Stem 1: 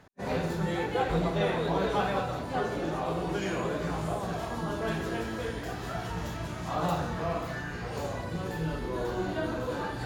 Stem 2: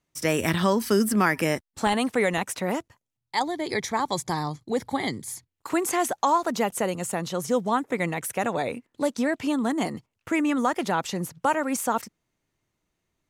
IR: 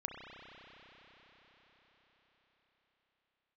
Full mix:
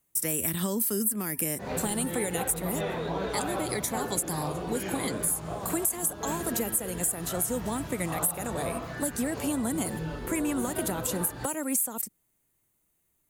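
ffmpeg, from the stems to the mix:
-filter_complex "[0:a]adelay=1400,volume=-2.5dB[a];[1:a]acrossover=split=460|3000[b][c][d];[c]acompressor=threshold=-33dB:ratio=6[e];[b][e][d]amix=inputs=3:normalize=0,aexciter=amount=7.1:drive=6.6:freq=7.8k,volume=-2dB[f];[a][f]amix=inputs=2:normalize=0,acompressor=threshold=-25dB:ratio=6"

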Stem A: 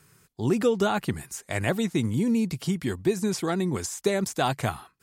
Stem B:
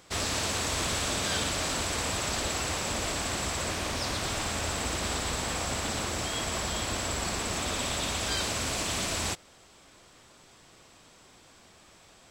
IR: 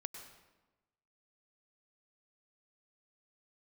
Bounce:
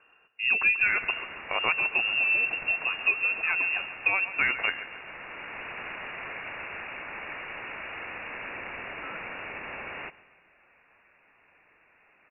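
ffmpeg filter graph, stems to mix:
-filter_complex "[0:a]highshelf=f=2.1k:g=10,volume=-2dB,asplit=3[a][b][c];[b]volume=-13dB[d];[1:a]aemphasis=mode=production:type=bsi,adelay=750,volume=-3dB,asplit=2[e][f];[f]volume=-19.5dB[g];[c]apad=whole_len=575694[h];[e][h]sidechaincompress=threshold=-29dB:ratio=3:attack=6.4:release=1110[i];[d][g]amix=inputs=2:normalize=0,aecho=0:1:137|274|411|548|685|822|959:1|0.51|0.26|0.133|0.0677|0.0345|0.0176[j];[a][i][j]amix=inputs=3:normalize=0,lowpass=f=2.5k:t=q:w=0.5098,lowpass=f=2.5k:t=q:w=0.6013,lowpass=f=2.5k:t=q:w=0.9,lowpass=f=2.5k:t=q:w=2.563,afreqshift=-2900"

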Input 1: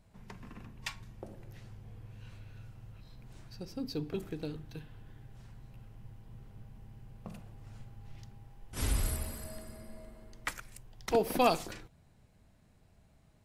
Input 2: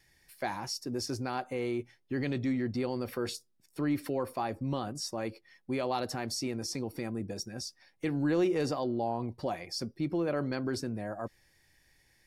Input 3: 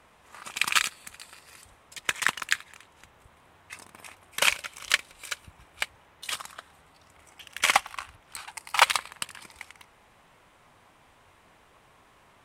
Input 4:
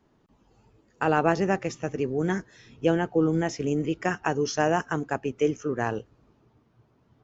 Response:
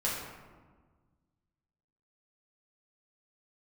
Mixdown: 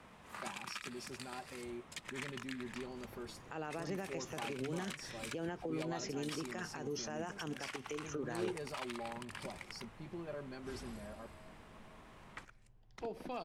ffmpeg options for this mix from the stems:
-filter_complex "[0:a]lowpass=8.7k,highshelf=f=4.6k:g=-9.5,adelay=1900,volume=-12dB[a];[1:a]aecho=1:1:5:0.65,volume=-15dB[b];[2:a]highshelf=f=9.7k:g=-9.5,alimiter=limit=-14.5dB:level=0:latency=1:release=99,equalizer=f=190:w=1.1:g=9,volume=-1dB[c];[3:a]acompressor=threshold=-30dB:ratio=6,adelay=2500,volume=1.5dB[d];[a][c][d]amix=inputs=3:normalize=0,acrossover=split=130|2500[e][f][g];[e]acompressor=threshold=-55dB:ratio=4[h];[f]acompressor=threshold=-33dB:ratio=4[i];[g]acompressor=threshold=-41dB:ratio=4[j];[h][i][j]amix=inputs=3:normalize=0,alimiter=level_in=7.5dB:limit=-24dB:level=0:latency=1:release=109,volume=-7.5dB,volume=0dB[k];[b][k]amix=inputs=2:normalize=0"

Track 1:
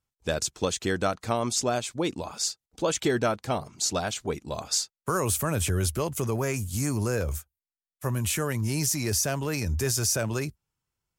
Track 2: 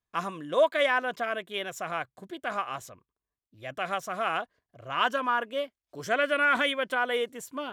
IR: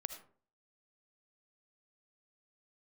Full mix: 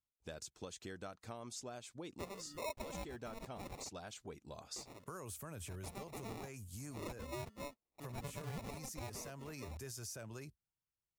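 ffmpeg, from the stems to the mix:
-filter_complex "[0:a]volume=-15dB,asplit=2[a][b];[1:a]firequalizer=gain_entry='entry(250,0);entry(410,-10);entry(870,4)':delay=0.05:min_phase=1,acrusher=samples=28:mix=1:aa=0.000001,adelay=2050,volume=-4.5dB,asplit=3[c][d][e];[c]atrim=end=3.89,asetpts=PTS-STARTPTS,afade=t=out:st=3.886:d=0.004:c=hsin[f];[d]atrim=start=3.89:end=4.76,asetpts=PTS-STARTPTS,volume=0[g];[e]atrim=start=4.76,asetpts=PTS-STARTPTS,afade=t=in:d=0.004:c=hsin[h];[f][g][h]concat=n=3:v=0:a=1[i];[b]apad=whole_len=435299[j];[i][j]sidechaincompress=threshold=-48dB:ratio=8:attack=36:release=279[k];[a][k]amix=inputs=2:normalize=0,acompressor=threshold=-47dB:ratio=2.5"

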